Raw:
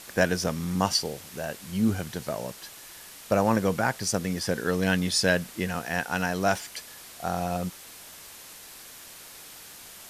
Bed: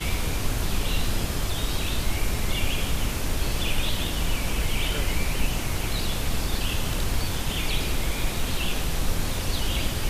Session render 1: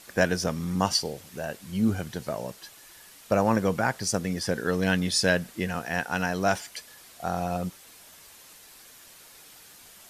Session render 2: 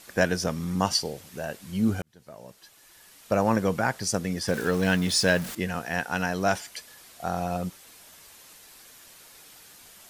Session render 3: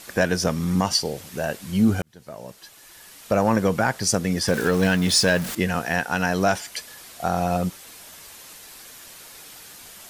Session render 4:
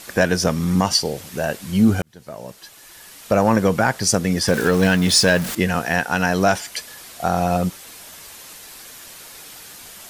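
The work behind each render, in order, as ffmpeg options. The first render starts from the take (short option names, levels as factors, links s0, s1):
-af "afftdn=nr=6:nf=-46"
-filter_complex "[0:a]asettb=1/sr,asplit=3[s0][s1][s2];[s0]atrim=end=4.484[s3];[s1]atrim=start=4.48:end=5.55,asetpts=PTS-STARTPTS,afade=t=in:d=0.004:c=qsin,afade=t=out:st=1.066:d=0.004:c=qsin,aeval=exprs='val(0)+0.5*0.0224*sgn(val(0))':c=same[s4];[s2]atrim=start=5.546[s5];[s3][s4]acrossfade=d=0.004:c1=hsin:c2=qsin[s6];[s6][s5]acrossfade=d=0.004:c1=qsin:c2=hsin,asplit=2[s7][s8];[s7]atrim=end=2.02,asetpts=PTS-STARTPTS,afade=t=out:st=2.016:d=0.004:c=hsin[s9];[s8]atrim=start=2.02,asetpts=PTS-STARTPTS,afade=t=in:d=1.44[s10];[s9][s10]concat=n=2:v=0:a=1"
-af "acontrast=82,alimiter=limit=0.355:level=0:latency=1:release=258"
-af "volume=1.5"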